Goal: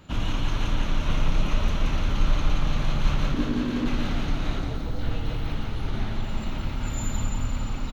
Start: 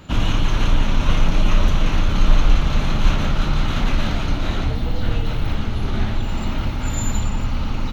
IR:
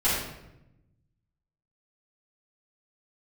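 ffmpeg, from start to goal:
-filter_complex "[0:a]asettb=1/sr,asplit=3[s0][s1][s2];[s0]atrim=end=3.344[s3];[s1]atrim=start=3.34:end=3.86,asetpts=PTS-STARTPTS,afade=t=in:d=0.004:c=qsin,afade=t=out:st=0.516:d=0.004:c=qsin,aeval=exprs='val(0)*sin(2*PI*270*n/s)':c=same[s4];[s2]atrim=start=3.856[s5];[s3][s4]acrossfade=d=0.004:c1=hsin:c2=qsin[s6];[s6][s5]acrossfade=d=0.004:c1=qsin:c2=hsin,asettb=1/sr,asplit=3[s7][s8][s9];[s7]atrim=end=4.594[s10];[s8]atrim=start=4.59:end=4.99,asetpts=PTS-STARTPTS,afade=t=in:d=0.004:c=qsin,afade=t=out:st=0.396:d=0.004:c=qsin,equalizer=f=2500:t=o:w=1:g=-12.5[s11];[s9]atrim=start=4.986[s12];[s10][s11]acrossfade=d=0.004:c1=hsin:c2=qsin[s13];[s13][s12]acrossfade=d=0.004:c1=qsin:c2=hsin,aecho=1:1:175|350|525|700|875|1050|1225|1400:0.501|0.301|0.18|0.108|0.065|0.039|0.0234|0.014,volume=0.398"

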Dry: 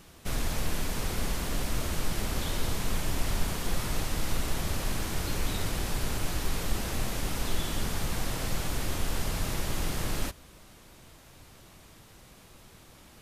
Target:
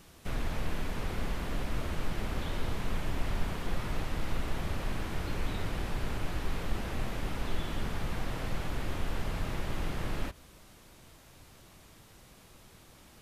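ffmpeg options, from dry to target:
-filter_complex "[0:a]acrossover=split=3400[s0][s1];[s1]acompressor=threshold=0.00251:ratio=4:attack=1:release=60[s2];[s0][s2]amix=inputs=2:normalize=0,volume=0.75"

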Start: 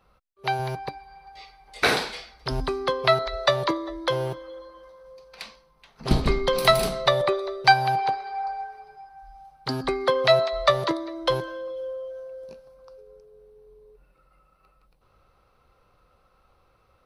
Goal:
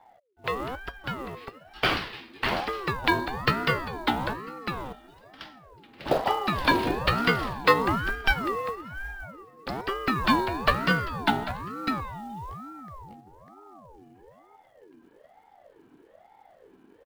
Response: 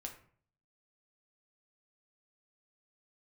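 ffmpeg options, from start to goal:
-filter_complex "[0:a]highshelf=f=4500:t=q:w=1.5:g=-14,acrossover=split=190|3400[s0][s1][s2];[s0]acompressor=mode=upward:threshold=0.00891:ratio=2.5[s3];[s3][s1][s2]amix=inputs=3:normalize=0,acrusher=bits=6:mode=log:mix=0:aa=0.000001,asplit=2[s4][s5];[s5]aecho=0:1:598:0.668[s6];[s4][s6]amix=inputs=2:normalize=0,aeval=exprs='val(0)*sin(2*PI*560*n/s+560*0.5/1.1*sin(2*PI*1.1*n/s))':c=same,volume=0.841"

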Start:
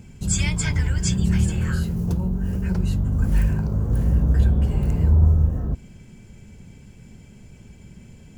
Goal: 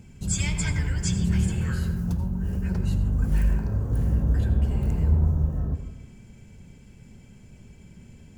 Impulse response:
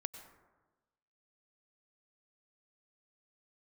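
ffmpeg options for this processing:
-filter_complex "[0:a]asettb=1/sr,asplit=3[s0][s1][s2];[s0]atrim=end=1.924[s3];[s1]atrim=start=1.92:end=2.41,asetpts=PTS-STARTPTS,afade=t=in:d=0.004:c=qsin,afade=t=out:st=0.486:d=0.004:c=qsin,equalizer=f=430:t=o:w=0.77:g=-7[s4];[s2]atrim=start=2.406[s5];[s3][s4]acrossfade=d=0.004:c1=hsin:c2=qsin[s6];[s6][s5]acrossfade=d=0.004:c1=qsin:c2=hsin[s7];[1:a]atrim=start_sample=2205,asetrate=52920,aresample=44100[s8];[s7][s8]afir=irnorm=-1:irlink=0"

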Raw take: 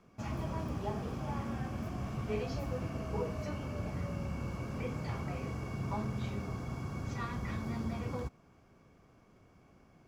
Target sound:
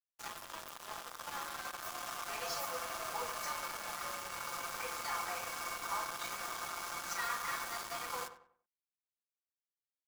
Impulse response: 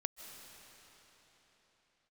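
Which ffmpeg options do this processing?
-filter_complex "[0:a]asplit=2[s0][s1];[s1]alimiter=level_in=3.16:limit=0.0631:level=0:latency=1:release=75,volume=0.316,volume=0.708[s2];[s0][s2]amix=inputs=2:normalize=0,highpass=780,aderivative[s3];[1:a]atrim=start_sample=2205,afade=t=out:st=0.19:d=0.01,atrim=end_sample=8820[s4];[s3][s4]afir=irnorm=-1:irlink=0,acrusher=bits=2:mode=log:mix=0:aa=0.000001,highshelf=f=1800:t=q:w=1.5:g=-9.5,aecho=1:1:5.8:0.85,afftfilt=real='re*lt(hypot(re,im),0.0178)':imag='im*lt(hypot(re,im),0.0178)':win_size=1024:overlap=0.75,dynaudnorm=f=310:g=11:m=1.78,acrusher=bits=8:mix=0:aa=0.5,asplit=2[s5][s6];[s6]adelay=95,lowpass=f=2100:p=1,volume=0.282,asplit=2[s7][s8];[s8]adelay=95,lowpass=f=2100:p=1,volume=0.35,asplit=2[s9][s10];[s10]adelay=95,lowpass=f=2100:p=1,volume=0.35,asplit=2[s11][s12];[s12]adelay=95,lowpass=f=2100:p=1,volume=0.35[s13];[s5][s7][s9][s11][s13]amix=inputs=5:normalize=0,volume=5.62"

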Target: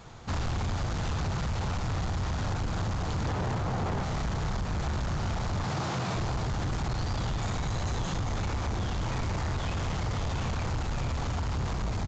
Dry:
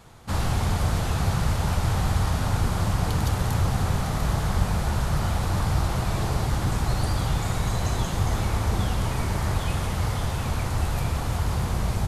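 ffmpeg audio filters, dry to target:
-filter_complex "[0:a]asettb=1/sr,asplit=3[s0][s1][s2];[s0]atrim=end=3.254[s3];[s1]atrim=start=3.25:end=4.03,asetpts=PTS-STARTPTS,afade=t=in:d=0.004:c=qsin,afade=t=out:st=0.776:d=0.004:c=qsin,equalizer=f=450:w=0.31:g=9.5[s4];[s2]atrim=start=4.026[s5];[s3][s4]acrossfade=d=0.004:c1=hsin:c2=qsin[s6];[s6][s5]acrossfade=d=0.004:c1=qsin:c2=hsin,asettb=1/sr,asplit=3[s7][s8][s9];[s7]atrim=end=5.634[s10];[s8]atrim=start=5.63:end=6.16,asetpts=PTS-STARTPTS,afade=t=in:d=0.004:c=qsin,afade=t=out:st=0.526:d=0.004:c=qsin,highpass=f=120:w=0.5412,highpass=f=120:w=1.3066[s11];[s9]atrim=start=6.156[s12];[s10][s11]acrossfade=d=0.004:c1=hsin:c2=qsin[s13];[s13][s12]acrossfade=d=0.004:c1=qsin:c2=hsin,acompressor=threshold=0.0708:ratio=6,flanger=delay=5.9:depth=8.5:regen=-77:speed=1.1:shape=sinusoidal,asoftclip=type=tanh:threshold=0.0224,aresample=16000,aresample=44100,volume=2.11"

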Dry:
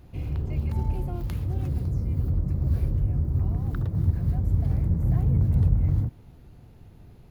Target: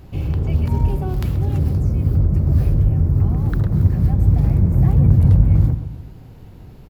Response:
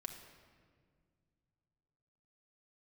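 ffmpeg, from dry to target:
-filter_complex "[0:a]asplit=2[s0][s1];[s1]adelay=140,lowpass=f=2000:p=1,volume=0.282,asplit=2[s2][s3];[s3]adelay=140,lowpass=f=2000:p=1,volume=0.46,asplit=2[s4][s5];[s5]adelay=140,lowpass=f=2000:p=1,volume=0.46,asplit=2[s6][s7];[s7]adelay=140,lowpass=f=2000:p=1,volume=0.46,asplit=2[s8][s9];[s9]adelay=140,lowpass=f=2000:p=1,volume=0.46[s10];[s0][s2][s4][s6][s8][s10]amix=inputs=6:normalize=0,asetrate=46746,aresample=44100,volume=2.66"

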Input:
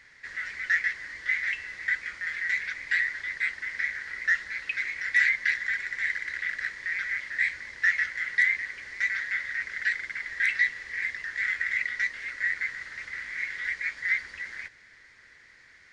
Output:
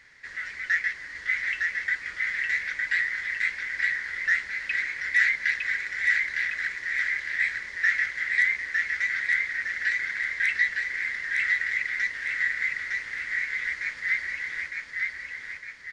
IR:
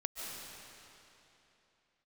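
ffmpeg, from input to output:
-af "aecho=1:1:909|1818|2727|3636|4545|5454:0.708|0.34|0.163|0.0783|0.0376|0.018"

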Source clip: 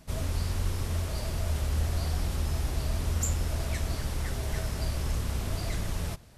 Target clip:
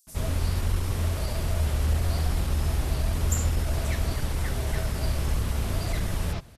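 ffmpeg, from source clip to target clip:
-filter_complex "[0:a]atempo=0.97,acrossover=split=5900[s0][s1];[s0]adelay=70[s2];[s2][s1]amix=inputs=2:normalize=0,volume=1.58"

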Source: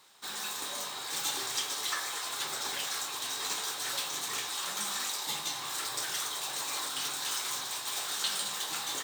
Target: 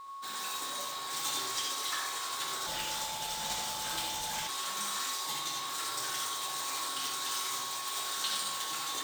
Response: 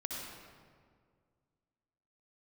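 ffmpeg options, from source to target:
-filter_complex "[0:a]aeval=exprs='val(0)+0.00891*sin(2*PI*1100*n/s)':c=same[s0];[1:a]atrim=start_sample=2205,atrim=end_sample=4410[s1];[s0][s1]afir=irnorm=-1:irlink=0,asplit=3[s2][s3][s4];[s2]afade=t=out:st=2.66:d=0.02[s5];[s3]afreqshift=-230,afade=t=in:st=2.66:d=0.02,afade=t=out:st=4.47:d=0.02[s6];[s4]afade=t=in:st=4.47:d=0.02[s7];[s5][s6][s7]amix=inputs=3:normalize=0"

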